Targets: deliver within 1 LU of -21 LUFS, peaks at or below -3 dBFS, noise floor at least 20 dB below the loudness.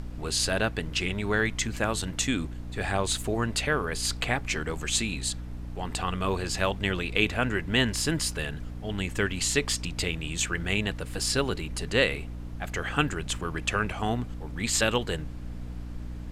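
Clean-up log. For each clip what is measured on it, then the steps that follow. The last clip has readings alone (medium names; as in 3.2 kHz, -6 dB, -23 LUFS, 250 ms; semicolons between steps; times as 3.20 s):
hum 60 Hz; highest harmonic 300 Hz; hum level -36 dBFS; noise floor -38 dBFS; noise floor target -49 dBFS; loudness -28.5 LUFS; peak level -7.0 dBFS; loudness target -21.0 LUFS
-> de-hum 60 Hz, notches 5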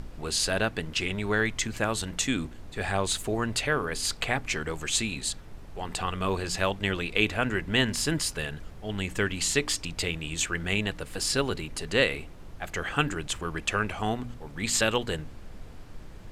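hum not found; noise floor -44 dBFS; noise floor target -49 dBFS
-> noise print and reduce 6 dB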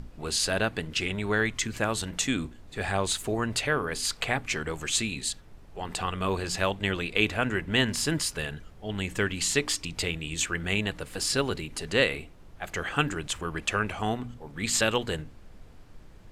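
noise floor -49 dBFS; loudness -28.5 LUFS; peak level -7.0 dBFS; loudness target -21.0 LUFS
-> trim +7.5 dB; peak limiter -3 dBFS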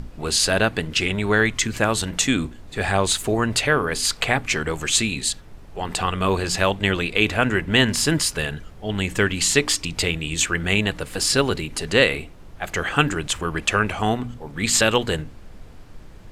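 loudness -21.0 LUFS; peak level -3.0 dBFS; noise floor -42 dBFS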